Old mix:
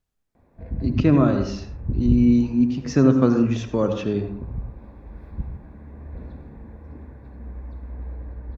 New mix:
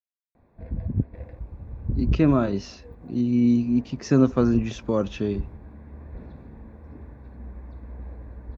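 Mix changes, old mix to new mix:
speech: entry +1.15 s; reverb: off

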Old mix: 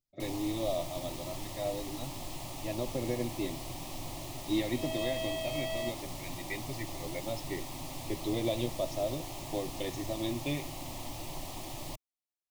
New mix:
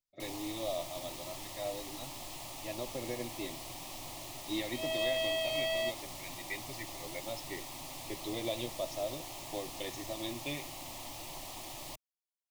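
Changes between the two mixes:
second sound +6.0 dB; master: add bass shelf 450 Hz -10 dB

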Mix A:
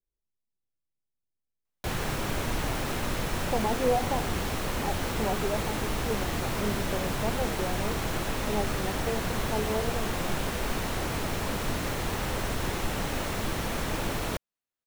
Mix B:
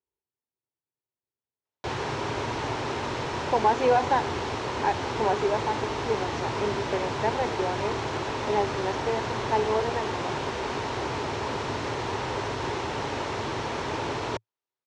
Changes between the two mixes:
speech: remove boxcar filter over 27 samples; master: add cabinet simulation 100–6200 Hz, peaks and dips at 110 Hz +4 dB, 190 Hz -10 dB, 400 Hz +7 dB, 930 Hz +8 dB

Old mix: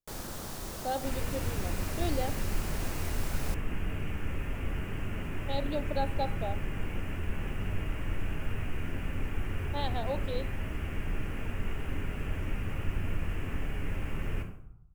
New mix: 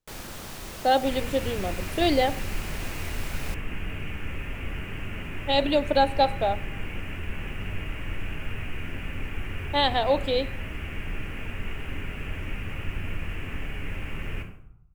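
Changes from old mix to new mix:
speech +11.5 dB; master: add peaking EQ 2.5 kHz +7.5 dB 1.2 oct

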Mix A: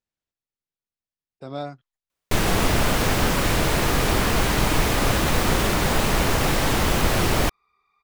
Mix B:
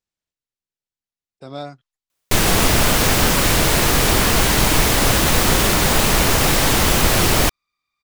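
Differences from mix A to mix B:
first sound +3.5 dB; second sound: add differentiator; master: add treble shelf 3.4 kHz +7.5 dB

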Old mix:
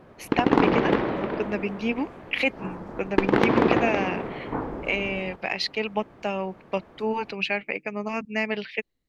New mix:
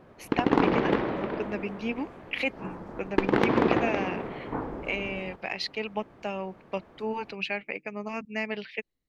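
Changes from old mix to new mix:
speech -5.0 dB; background -3.0 dB

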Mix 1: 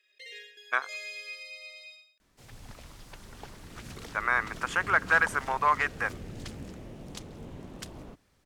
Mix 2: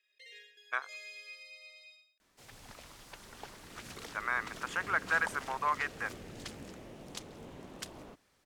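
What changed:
speech -6.5 dB; first sound -7.5 dB; master: add bass shelf 220 Hz -11.5 dB

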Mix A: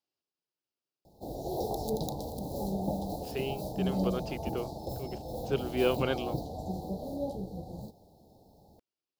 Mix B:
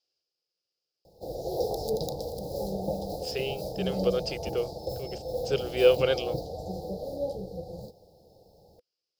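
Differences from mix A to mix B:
speech: add treble shelf 2.8 kHz +10.5 dB; master: add graphic EQ with 31 bands 250 Hz -11 dB, 500 Hz +11 dB, 1 kHz -7 dB, 5 kHz +9 dB

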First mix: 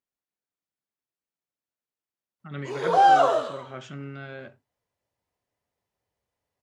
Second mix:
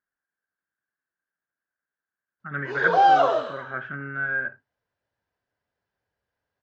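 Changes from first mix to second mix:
speech: add resonant low-pass 1.6 kHz, resonance Q 13; master: add low-pass 5.4 kHz 24 dB/octave

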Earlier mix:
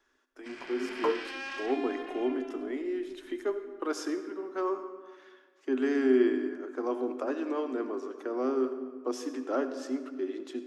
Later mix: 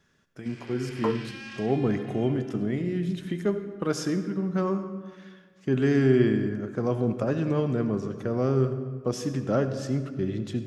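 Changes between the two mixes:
speech: remove rippled Chebyshev high-pass 250 Hz, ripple 6 dB; first sound: add peaking EQ 680 Hz -9.5 dB 2.3 oct

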